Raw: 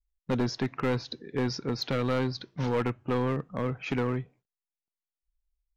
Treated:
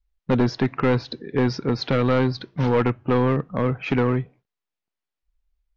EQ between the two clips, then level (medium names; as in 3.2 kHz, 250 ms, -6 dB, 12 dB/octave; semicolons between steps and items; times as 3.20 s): distance through air 150 m; +8.5 dB